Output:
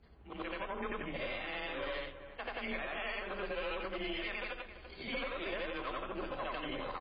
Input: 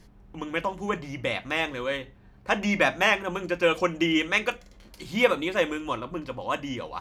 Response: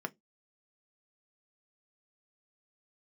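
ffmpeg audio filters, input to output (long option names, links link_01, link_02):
-filter_complex "[0:a]afftfilt=real='re':imag='-im':win_size=8192:overlap=0.75,acompressor=threshold=-31dB:ratio=12,aeval=exprs='0.0794*(cos(1*acos(clip(val(0)/0.0794,-1,1)))-cos(1*PI/2))+0.00126*(cos(3*acos(clip(val(0)/0.0794,-1,1)))-cos(3*PI/2))+0.0112*(cos(6*acos(clip(val(0)/0.0794,-1,1)))-cos(6*PI/2))':channel_layout=same,bass=frequency=250:gain=-11,treble=frequency=4000:gain=-5,bandreject=frequency=880:width=12,asplit=2[link_01][link_02];[link_02]adelay=337,lowpass=frequency=1900:poles=1,volume=-16.5dB,asplit=2[link_03][link_04];[link_04]adelay=337,lowpass=frequency=1900:poles=1,volume=0.3,asplit=2[link_05][link_06];[link_06]adelay=337,lowpass=frequency=1900:poles=1,volume=0.3[link_07];[link_01][link_03][link_05][link_07]amix=inputs=4:normalize=0,alimiter=level_in=6.5dB:limit=-24dB:level=0:latency=1:release=85,volume=-6.5dB,lowshelf=frequency=100:gain=8.5,afreqshift=23,aresample=11025,aeval=exprs='clip(val(0),-1,0.02)':channel_layout=same,aresample=44100,volume=2dB" -ar 11025 -c:a libmp3lame -b:a 16k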